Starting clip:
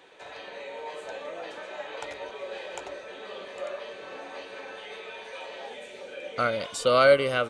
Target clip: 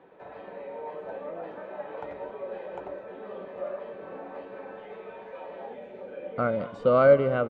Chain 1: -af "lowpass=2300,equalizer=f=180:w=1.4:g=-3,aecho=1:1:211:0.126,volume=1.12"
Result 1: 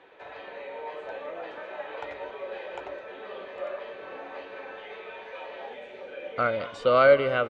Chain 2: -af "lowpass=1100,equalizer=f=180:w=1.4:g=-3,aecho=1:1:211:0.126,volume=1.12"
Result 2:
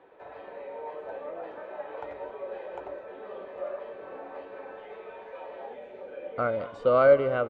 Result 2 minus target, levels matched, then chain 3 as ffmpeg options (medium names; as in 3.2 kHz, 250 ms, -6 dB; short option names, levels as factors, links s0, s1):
250 Hz band -4.5 dB
-af "lowpass=1100,equalizer=f=180:w=1.4:g=8,aecho=1:1:211:0.126,volume=1.12"